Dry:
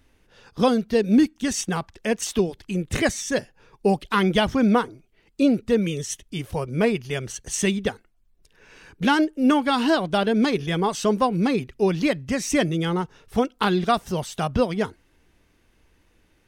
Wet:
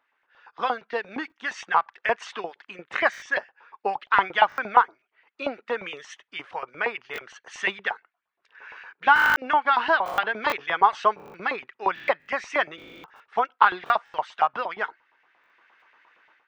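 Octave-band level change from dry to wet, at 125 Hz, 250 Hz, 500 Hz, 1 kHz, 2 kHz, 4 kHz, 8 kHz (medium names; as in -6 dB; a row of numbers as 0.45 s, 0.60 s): under -25 dB, -20.5 dB, -7.0 dB, +5.0 dB, +5.5 dB, -5.0 dB, under -15 dB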